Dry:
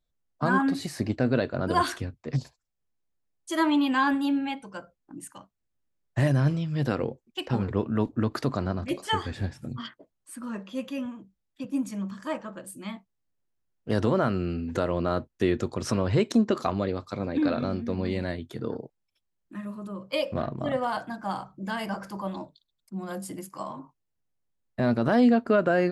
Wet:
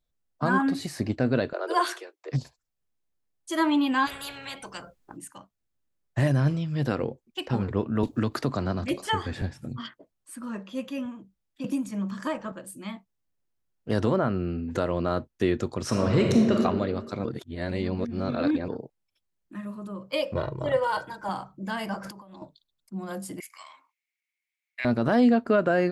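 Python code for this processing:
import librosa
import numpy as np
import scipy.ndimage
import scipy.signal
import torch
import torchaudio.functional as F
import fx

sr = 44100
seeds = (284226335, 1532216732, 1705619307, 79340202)

y = fx.steep_highpass(x, sr, hz=330.0, slope=96, at=(1.53, 2.32))
y = fx.spectral_comp(y, sr, ratio=10.0, at=(4.05, 5.16), fade=0.02)
y = fx.band_squash(y, sr, depth_pct=70, at=(8.03, 9.42))
y = fx.band_squash(y, sr, depth_pct=100, at=(11.64, 12.52))
y = fx.high_shelf(y, sr, hz=3200.0, db=-12.0, at=(14.16, 14.71))
y = fx.reverb_throw(y, sr, start_s=15.87, length_s=0.68, rt60_s=1.6, drr_db=0.5)
y = fx.comb(y, sr, ms=2.1, depth=0.89, at=(20.35, 21.29))
y = fx.over_compress(y, sr, threshold_db=-45.0, ratio=-1.0, at=(22.01, 22.42))
y = fx.highpass_res(y, sr, hz=2200.0, q=13.0, at=(23.4, 24.85))
y = fx.edit(y, sr, fx.reverse_span(start_s=17.25, length_s=1.43), tone=tone)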